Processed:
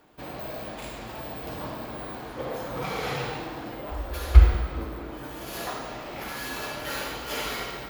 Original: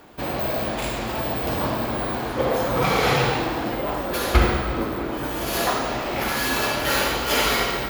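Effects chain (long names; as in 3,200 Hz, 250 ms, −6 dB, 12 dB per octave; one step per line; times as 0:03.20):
0:03.91–0:04.55: low shelf with overshoot 100 Hz +12.5 dB, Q 3
convolution reverb RT60 0.85 s, pre-delay 6 ms, DRR 15 dB
level −11 dB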